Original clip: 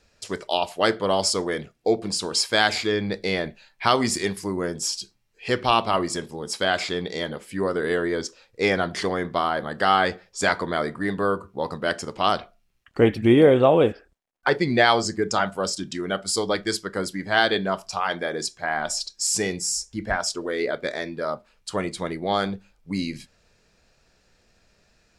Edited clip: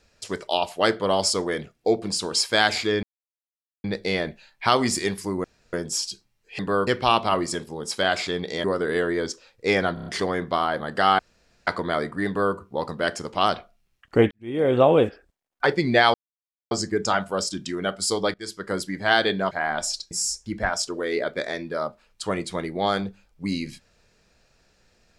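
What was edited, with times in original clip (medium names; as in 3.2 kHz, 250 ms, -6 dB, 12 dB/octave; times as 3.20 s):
3.03 s: insert silence 0.81 s
4.63 s: insert room tone 0.29 s
7.26–7.59 s: delete
8.89 s: stutter 0.03 s, 5 plays
10.02–10.50 s: room tone
11.10–11.38 s: copy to 5.49 s
13.14–13.62 s: fade in quadratic
14.97 s: insert silence 0.57 s
16.60–16.98 s: fade in, from -23 dB
17.77–18.58 s: delete
19.18–19.58 s: delete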